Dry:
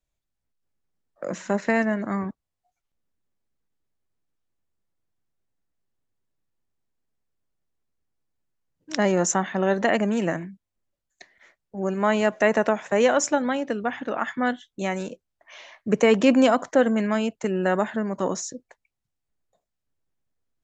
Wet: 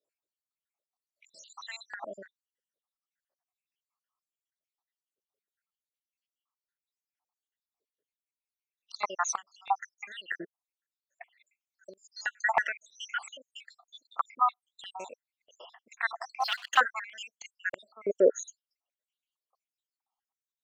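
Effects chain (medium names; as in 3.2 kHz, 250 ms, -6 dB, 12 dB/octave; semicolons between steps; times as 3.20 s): random holes in the spectrogram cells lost 80%; 16.40–16.80 s: waveshaping leveller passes 2; step-sequenced high-pass 3.1 Hz 440–3900 Hz; trim -1.5 dB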